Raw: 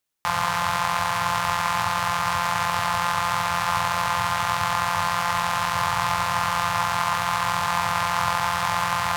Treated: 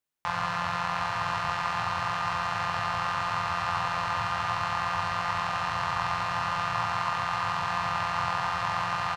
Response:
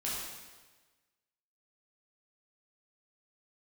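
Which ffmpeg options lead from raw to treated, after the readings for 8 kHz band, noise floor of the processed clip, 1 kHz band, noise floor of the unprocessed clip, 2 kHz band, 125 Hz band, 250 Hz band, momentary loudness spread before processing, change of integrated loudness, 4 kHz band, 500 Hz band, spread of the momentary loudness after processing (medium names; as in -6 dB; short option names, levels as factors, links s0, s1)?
-14.0 dB, -31 dBFS, -5.5 dB, -26 dBFS, -5.5 dB, -4.5 dB, -5.5 dB, 0 LU, -5.5 dB, -7.5 dB, -5.5 dB, 1 LU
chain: -filter_complex "[0:a]asplit=2[s0][s1];[1:a]atrim=start_sample=2205,afade=t=out:st=0.25:d=0.01,atrim=end_sample=11466,lowpass=3100[s2];[s1][s2]afir=irnorm=-1:irlink=0,volume=0.562[s3];[s0][s3]amix=inputs=2:normalize=0,acrossover=split=6500[s4][s5];[s5]acompressor=threshold=0.002:ratio=4:attack=1:release=60[s6];[s4][s6]amix=inputs=2:normalize=0,aecho=1:1:759:0.355,volume=0.398"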